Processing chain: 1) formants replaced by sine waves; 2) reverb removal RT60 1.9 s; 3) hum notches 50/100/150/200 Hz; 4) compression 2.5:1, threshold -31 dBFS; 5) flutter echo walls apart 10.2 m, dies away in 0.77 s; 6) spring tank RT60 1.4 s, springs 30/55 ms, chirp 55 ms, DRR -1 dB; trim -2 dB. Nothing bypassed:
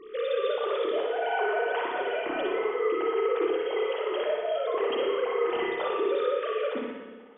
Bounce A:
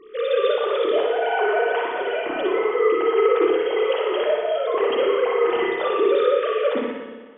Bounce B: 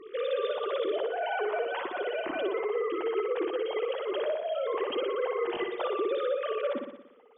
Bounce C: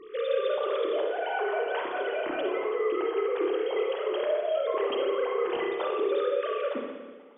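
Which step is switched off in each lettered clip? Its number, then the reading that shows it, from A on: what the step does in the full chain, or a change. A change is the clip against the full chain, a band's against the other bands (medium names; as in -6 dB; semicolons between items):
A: 4, mean gain reduction 6.5 dB; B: 6, echo-to-direct 4.0 dB to -3.0 dB; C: 5, echo-to-direct 4.0 dB to 1.0 dB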